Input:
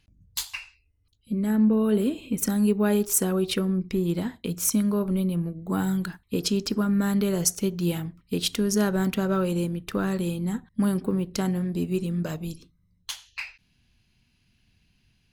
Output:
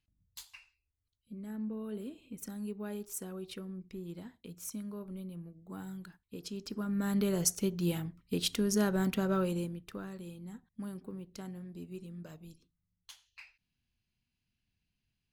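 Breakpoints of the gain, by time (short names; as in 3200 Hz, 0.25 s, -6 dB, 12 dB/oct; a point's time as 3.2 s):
6.45 s -18 dB
7.21 s -6 dB
9.43 s -6 dB
10.11 s -18 dB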